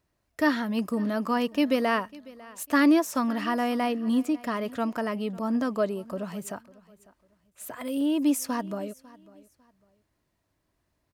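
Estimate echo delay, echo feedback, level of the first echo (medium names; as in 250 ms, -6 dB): 549 ms, 26%, -21.5 dB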